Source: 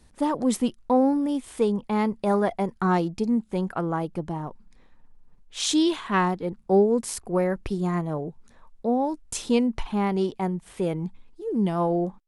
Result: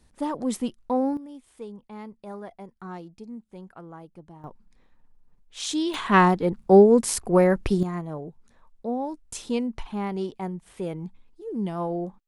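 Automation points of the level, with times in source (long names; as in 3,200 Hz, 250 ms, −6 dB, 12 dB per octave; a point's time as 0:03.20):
−4 dB
from 0:01.17 −16 dB
from 0:04.44 −5 dB
from 0:05.94 +5.5 dB
from 0:07.83 −5 dB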